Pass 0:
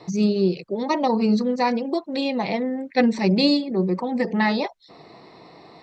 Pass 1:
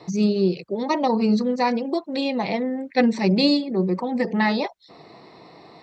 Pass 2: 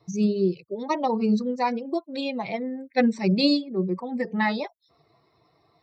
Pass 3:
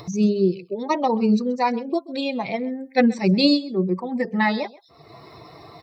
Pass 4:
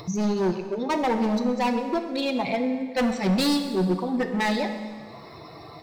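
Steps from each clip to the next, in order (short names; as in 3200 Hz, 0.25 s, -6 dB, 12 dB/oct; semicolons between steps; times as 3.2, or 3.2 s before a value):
HPF 41 Hz
per-bin expansion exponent 1.5; gain -1 dB
upward compressor, threshold -32 dBFS; echo 0.13 s -20.5 dB; gain +3.5 dB
hard clip -20.5 dBFS, distortion -8 dB; plate-style reverb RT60 1.8 s, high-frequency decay 0.85×, DRR 6.5 dB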